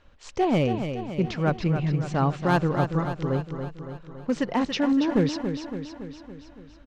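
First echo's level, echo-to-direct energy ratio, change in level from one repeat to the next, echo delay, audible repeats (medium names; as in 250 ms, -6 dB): -8.0 dB, -6.0 dB, -4.5 dB, 281 ms, 6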